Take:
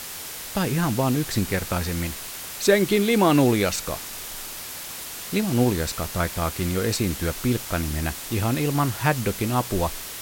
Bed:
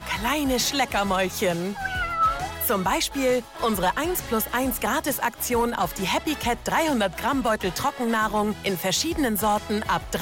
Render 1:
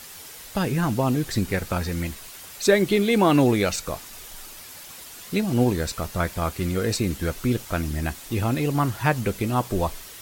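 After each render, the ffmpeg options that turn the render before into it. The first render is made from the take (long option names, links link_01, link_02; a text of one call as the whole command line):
ffmpeg -i in.wav -af "afftdn=noise_reduction=8:noise_floor=-36" out.wav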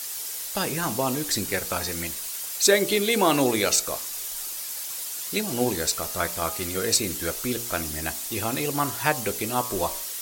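ffmpeg -i in.wav -af "bass=frequency=250:gain=-11,treble=frequency=4000:gain=10,bandreject=frequency=58.99:width_type=h:width=4,bandreject=frequency=117.98:width_type=h:width=4,bandreject=frequency=176.97:width_type=h:width=4,bandreject=frequency=235.96:width_type=h:width=4,bandreject=frequency=294.95:width_type=h:width=4,bandreject=frequency=353.94:width_type=h:width=4,bandreject=frequency=412.93:width_type=h:width=4,bandreject=frequency=471.92:width_type=h:width=4,bandreject=frequency=530.91:width_type=h:width=4,bandreject=frequency=589.9:width_type=h:width=4,bandreject=frequency=648.89:width_type=h:width=4,bandreject=frequency=707.88:width_type=h:width=4,bandreject=frequency=766.87:width_type=h:width=4,bandreject=frequency=825.86:width_type=h:width=4,bandreject=frequency=884.85:width_type=h:width=4,bandreject=frequency=943.84:width_type=h:width=4,bandreject=frequency=1002.83:width_type=h:width=4,bandreject=frequency=1061.82:width_type=h:width=4,bandreject=frequency=1120.81:width_type=h:width=4,bandreject=frequency=1179.8:width_type=h:width=4,bandreject=frequency=1238.79:width_type=h:width=4,bandreject=frequency=1297.78:width_type=h:width=4" out.wav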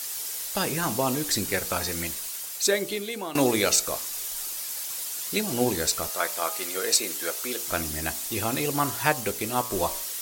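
ffmpeg -i in.wav -filter_complex "[0:a]asettb=1/sr,asplit=3[link_01][link_02][link_03];[link_01]atrim=end=6.094[link_04];[link_02]atrim=start=6.09:end=7.68,asetpts=PTS-STARTPTS,afade=type=in:duration=0.004:curve=qsin,afade=type=out:start_time=1.586:duration=0.004:curve=qsin,highpass=420[link_05];[link_03]atrim=start=7.676[link_06];[link_04][link_05]acrossfade=duration=0.004:curve1=hsin:curve2=qsin[link_07];[link_07][link_06]acrossfade=duration=0.004:curve1=qsin:curve2=hsin,asettb=1/sr,asplit=3[link_08][link_09][link_10];[link_08]atrim=end=9.134[link_11];[link_09]atrim=start=9.13:end=9.72,asetpts=PTS-STARTPTS,afade=type=in:duration=0.004:curve=qsin,afade=type=out:start_time=0.586:duration=0.004:curve=qsin,aeval=exprs='sgn(val(0))*max(abs(val(0))-0.0075,0)':channel_layout=same[link_12];[link_10]atrim=start=9.716[link_13];[link_11][link_12]acrossfade=duration=0.004:curve1=hsin:curve2=qsin[link_14];[link_14][link_13]acrossfade=duration=0.004:curve1=qsin:curve2=hsin,asplit=2[link_15][link_16];[link_15]atrim=end=3.35,asetpts=PTS-STARTPTS,afade=type=out:start_time=2.09:duration=1.26:silence=0.141254[link_17];[link_16]atrim=start=3.35,asetpts=PTS-STARTPTS,afade=type=in:duration=0.004:curve=hsin:silence=0.141254[link_18];[link_17][link_18]concat=n=2:v=0:a=1" out.wav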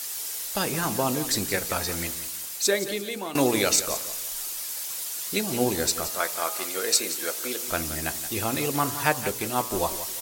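ffmpeg -i in.wav -af "aecho=1:1:174|348|522:0.224|0.0716|0.0229" out.wav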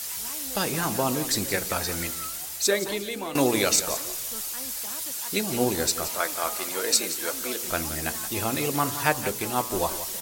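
ffmpeg -i in.wav -i bed.wav -filter_complex "[1:a]volume=-20.5dB[link_01];[0:a][link_01]amix=inputs=2:normalize=0" out.wav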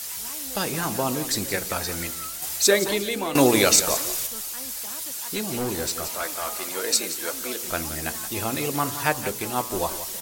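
ffmpeg -i in.wav -filter_complex "[0:a]asettb=1/sr,asplit=3[link_01][link_02][link_03];[link_01]atrim=end=2.424[link_04];[link_02]atrim=start=2.42:end=4.27,asetpts=PTS-STARTPTS,afade=type=in:duration=0.004:curve=qsin,afade=type=out:start_time=1.846:duration=0.004:curve=qsin,acontrast=27[link_05];[link_03]atrim=start=4.266[link_06];[link_04][link_05]acrossfade=duration=0.004:curve1=hsin:curve2=qsin[link_07];[link_07][link_06]acrossfade=duration=0.004:curve1=qsin:curve2=hsin,asettb=1/sr,asplit=3[link_08][link_09][link_10];[link_08]atrim=end=4.964[link_11];[link_09]atrim=start=4.96:end=6.67,asetpts=PTS-STARTPTS,afade=type=in:duration=0.004:curve=qsin,afade=type=out:start_time=1.706:duration=0.004:curve=qsin,asoftclip=type=hard:threshold=-23dB[link_12];[link_10]atrim=start=6.666[link_13];[link_11][link_12]acrossfade=duration=0.004:curve1=hsin:curve2=qsin[link_14];[link_14][link_13]acrossfade=duration=0.004:curve1=qsin:curve2=hsin" out.wav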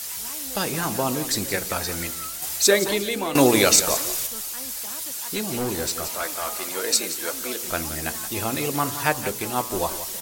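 ffmpeg -i in.wav -af "volume=1dB" out.wav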